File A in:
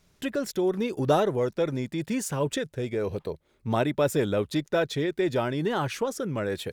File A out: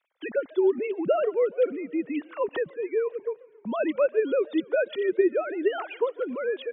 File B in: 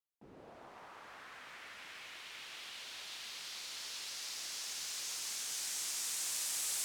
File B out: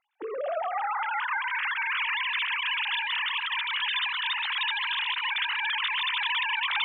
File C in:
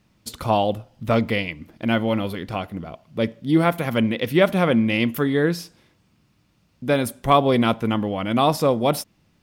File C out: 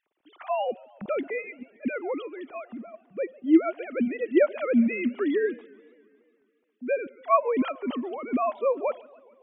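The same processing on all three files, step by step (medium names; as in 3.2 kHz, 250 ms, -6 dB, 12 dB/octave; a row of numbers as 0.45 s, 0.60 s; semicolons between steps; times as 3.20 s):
formants replaced by sine waves; modulated delay 140 ms, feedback 66%, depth 210 cents, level -24 dB; normalise loudness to -27 LUFS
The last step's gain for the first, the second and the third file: +1.0 dB, +14.0 dB, -6.0 dB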